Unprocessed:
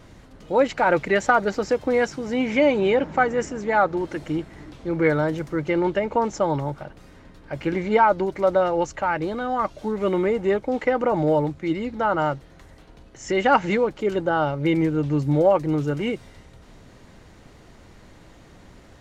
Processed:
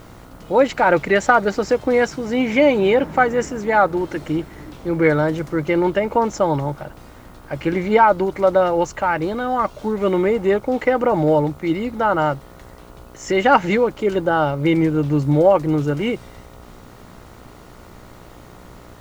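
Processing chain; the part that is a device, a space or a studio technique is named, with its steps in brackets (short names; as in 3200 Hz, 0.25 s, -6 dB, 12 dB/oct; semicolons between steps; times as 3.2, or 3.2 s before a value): video cassette with head-switching buzz (buzz 60 Hz, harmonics 24, -50 dBFS -2 dB/oct; white noise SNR 39 dB); gain +4 dB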